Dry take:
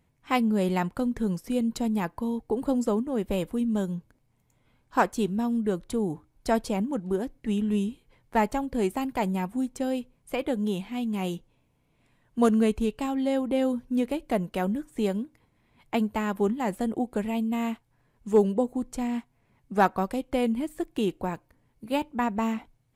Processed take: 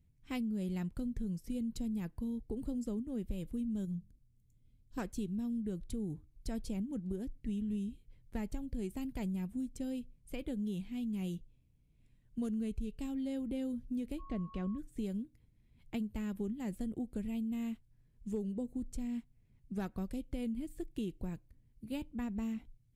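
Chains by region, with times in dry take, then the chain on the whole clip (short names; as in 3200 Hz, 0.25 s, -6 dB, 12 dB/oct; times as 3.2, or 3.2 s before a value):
3.85–4.98 bell 1300 Hz -12 dB 2.1 oct + notches 50/100/150/200 Hz + overloaded stage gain 27.5 dB
14.18–14.77 whine 1100 Hz -29 dBFS + air absorption 140 m
whole clip: passive tone stack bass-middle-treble 10-0-1; compressor, threshold -45 dBFS; gain +11 dB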